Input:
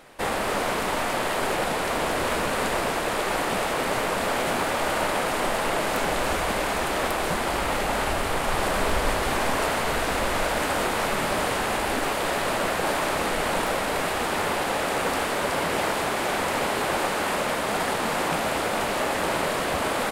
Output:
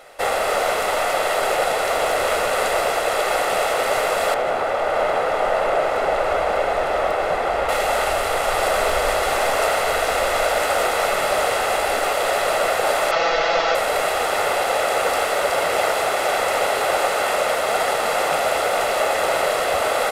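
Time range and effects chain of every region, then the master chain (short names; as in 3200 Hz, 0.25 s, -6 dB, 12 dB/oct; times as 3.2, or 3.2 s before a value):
4.34–7.69 LPF 1400 Hz 6 dB/oct + echo 0.596 s -4.5 dB
13.11–13.75 CVSD 32 kbps + low shelf 470 Hz -4.5 dB + comb 6 ms, depth 93%
whole clip: resonant low shelf 300 Hz -10 dB, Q 1.5; comb 1.5 ms, depth 47%; gain +3.5 dB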